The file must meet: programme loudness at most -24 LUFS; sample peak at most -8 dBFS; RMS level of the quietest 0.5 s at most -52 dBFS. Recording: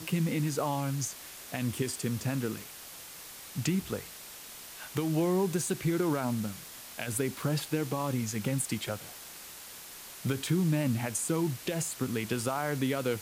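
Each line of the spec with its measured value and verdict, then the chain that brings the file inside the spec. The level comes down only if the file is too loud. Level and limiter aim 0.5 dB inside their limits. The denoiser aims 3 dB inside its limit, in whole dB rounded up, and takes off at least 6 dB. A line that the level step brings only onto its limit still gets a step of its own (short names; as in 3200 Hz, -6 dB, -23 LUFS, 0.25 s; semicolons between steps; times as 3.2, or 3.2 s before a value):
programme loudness -32.0 LUFS: OK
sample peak -18.0 dBFS: OK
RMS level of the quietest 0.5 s -47 dBFS: fail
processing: denoiser 8 dB, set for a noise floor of -47 dBFS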